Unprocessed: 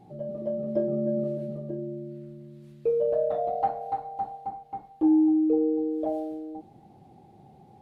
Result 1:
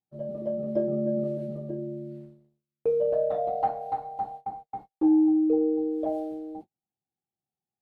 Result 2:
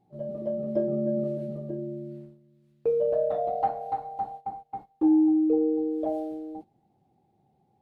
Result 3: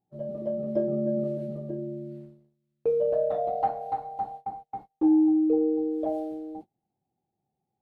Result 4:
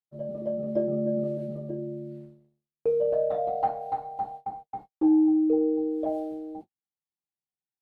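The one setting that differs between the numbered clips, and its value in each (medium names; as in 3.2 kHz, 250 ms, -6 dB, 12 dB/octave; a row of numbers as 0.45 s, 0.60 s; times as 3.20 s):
gate, range: -44 dB, -15 dB, -30 dB, -56 dB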